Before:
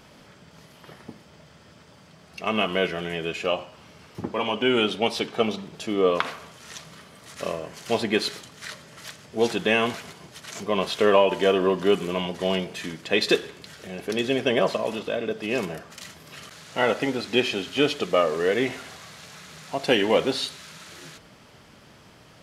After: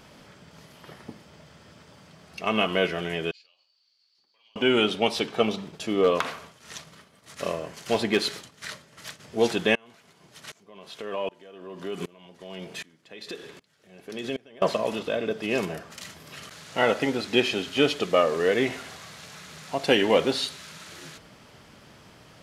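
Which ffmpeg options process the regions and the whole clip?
ffmpeg -i in.wav -filter_complex "[0:a]asettb=1/sr,asplit=3[link_01][link_02][link_03];[link_01]atrim=end=3.314[link_04];[link_02]atrim=start=3.31:end=4.56,asetpts=PTS-STARTPTS,afade=type=in:duration=0.004:curve=qsin,afade=type=out:start_time=1.246:duration=0.004:curve=qsin,acompressor=threshold=-26dB:ratio=6:attack=3.2:release=140:knee=1:detection=peak,bandpass=frequency=4500:width_type=q:width=18[link_05];[link_03]atrim=start=4.556[link_06];[link_04][link_05]acrossfade=duration=0.004:curve1=hsin:curve2=qsin[link_07];[link_07][link_06]acrossfade=duration=0.004:curve1=qsin:curve2=hsin,asettb=1/sr,asplit=3[link_08][link_09][link_10];[link_08]atrim=end=5.474[link_11];[link_09]atrim=start=5.47:end=9.2,asetpts=PTS-STARTPTS,afade=type=in:duration=0.004:curve=qsin,afade=type=out:start_time=3.726:duration=0.004:curve=qsin,agate=range=-33dB:threshold=-42dB:ratio=3:release=100:detection=peak,asoftclip=type=hard:threshold=-13dB[link_12];[link_10]atrim=start=9.196[link_13];[link_11][link_12]acrossfade=duration=0.004:curve1=hsin:curve2=qsin[link_14];[link_14][link_13]acrossfade=duration=0.004:curve1=qsin:curve2=hsin,asettb=1/sr,asplit=3[link_15][link_16][link_17];[link_15]atrim=end=9.754[link_18];[link_16]atrim=start=9.75:end=14.62,asetpts=PTS-STARTPTS,afade=type=in:duration=0.004:curve=qsin,afade=type=out:start_time=4.866:duration=0.004:curve=qsin,highpass=92,acompressor=threshold=-23dB:ratio=5:attack=3.2:release=140:knee=1:detection=peak,aeval=exprs='val(0)*pow(10,-27*if(lt(mod(-1.3*n/s,1),2*abs(-1.3)/1000),1-mod(-1.3*n/s,1)/(2*abs(-1.3)/1000),(mod(-1.3*n/s,1)-2*abs(-1.3)/1000)/(1-2*abs(-1.3)/1000))/20)':channel_layout=same[link_19];[link_17]atrim=start=14.616[link_20];[link_18][link_19]acrossfade=duration=0.004:curve1=hsin:curve2=qsin[link_21];[link_21][link_20]acrossfade=duration=0.004:curve1=qsin:curve2=hsin" out.wav

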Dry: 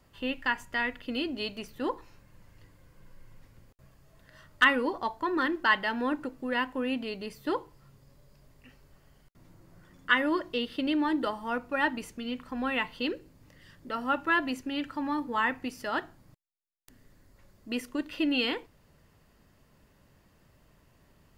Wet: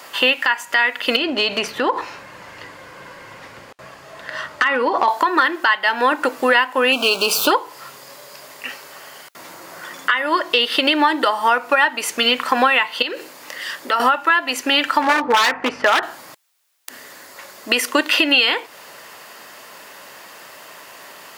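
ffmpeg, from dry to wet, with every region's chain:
ffmpeg -i in.wav -filter_complex "[0:a]asettb=1/sr,asplit=3[link_01][link_02][link_03];[link_01]atrim=end=1.164[link_04];[link_02]atrim=start=1.16:end=5.08,asetpts=PTS-STARTPTS,afade=type=in:duration=0.004:curve=qsin,afade=type=out:start_time=3.916:duration=0.004:curve=qsin,acompressor=threshold=-37dB:ratio=12:attack=3.2:release=140:knee=1:detection=peak,asoftclip=type=hard:threshold=-34dB,aemphasis=mode=reproduction:type=bsi[link_05];[link_03]atrim=start=5.076[link_06];[link_04][link_05]acrossfade=duration=0.004:curve1=hsin:curve2=qsin[link_07];[link_07][link_06]acrossfade=duration=0.004:curve1=qsin:curve2=hsin,asettb=1/sr,asplit=3[link_08][link_09][link_10];[link_08]atrim=end=6.924[link_11];[link_09]atrim=start=6.92:end=7.51,asetpts=PTS-STARTPTS,afade=type=in:duration=0.004:curve=qsin,afade=type=out:start_time=0.586:duration=0.004:curve=qsin,aeval=exprs='val(0)+0.5*0.00631*sgn(val(0))':channel_layout=same,asuperstop=centerf=1900:order=8:qfactor=2.2[link_12];[link_10]atrim=start=7.506[link_13];[link_11][link_12]acrossfade=duration=0.004:curve1=hsin:curve2=qsin[link_14];[link_14][link_13]acrossfade=duration=0.004:curve1=qsin:curve2=hsin,asettb=1/sr,asplit=3[link_15][link_16][link_17];[link_15]atrim=end=13.024[link_18];[link_16]atrim=start=13.02:end=14,asetpts=PTS-STARTPTS,afade=type=in:duration=0.004:curve=qsin,afade=type=out:start_time=0.976:duration=0.004:curve=qsin,highpass=frequency=200:poles=1,acompressor=threshold=-43dB:ratio=5:attack=3.2:release=140:knee=1:detection=peak[link_19];[link_17]atrim=start=13.996[link_20];[link_18][link_19]acrossfade=duration=0.004:curve1=hsin:curve2=qsin[link_21];[link_21][link_20]acrossfade=duration=0.004:curve1=qsin:curve2=hsin,asettb=1/sr,asplit=3[link_22][link_23][link_24];[link_22]atrim=end=15.024[link_25];[link_23]atrim=start=15.02:end=16.03,asetpts=PTS-STARTPTS,afade=type=in:duration=0.004:curve=qsin,afade=type=out:start_time=1.006:duration=0.004:curve=qsin,aeval=exprs='val(0)+0.00501*(sin(2*PI*50*n/s)+sin(2*PI*2*50*n/s)/2+sin(2*PI*3*50*n/s)/3+sin(2*PI*4*50*n/s)/4+sin(2*PI*5*50*n/s)/5)':channel_layout=same,lowpass=1600,aeval=exprs='0.0398*(abs(mod(val(0)/0.0398+3,4)-2)-1)':channel_layout=same[link_26];[link_24]atrim=start=16.026[link_27];[link_25][link_26]acrossfade=duration=0.004:curve1=hsin:curve2=qsin[link_28];[link_28][link_27]acrossfade=duration=0.004:curve1=qsin:curve2=hsin,highpass=710,acompressor=threshold=-41dB:ratio=20,alimiter=level_in=32.5dB:limit=-1dB:release=50:level=0:latency=1,volume=-3dB" out.wav

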